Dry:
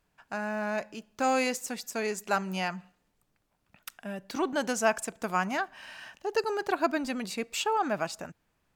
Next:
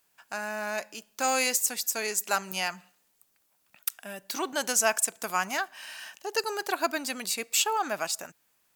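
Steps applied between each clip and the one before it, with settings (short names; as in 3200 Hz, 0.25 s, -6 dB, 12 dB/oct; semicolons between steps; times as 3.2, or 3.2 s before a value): RIAA curve recording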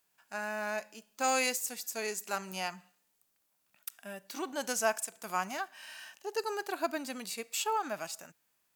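harmonic-percussive split percussive -9 dB; gain -2.5 dB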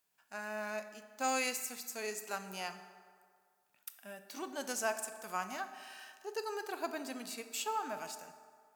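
reverb RT60 2.0 s, pre-delay 4 ms, DRR 8.5 dB; gain -5 dB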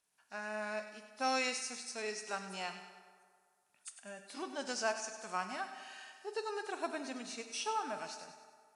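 nonlinear frequency compression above 3500 Hz 1.5:1; thin delay 99 ms, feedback 49%, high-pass 1500 Hz, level -10 dB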